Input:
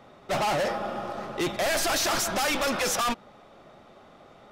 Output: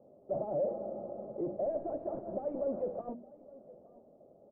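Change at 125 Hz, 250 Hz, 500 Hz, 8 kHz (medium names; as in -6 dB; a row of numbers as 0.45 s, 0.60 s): -10.5 dB, -7.5 dB, -4.5 dB, under -40 dB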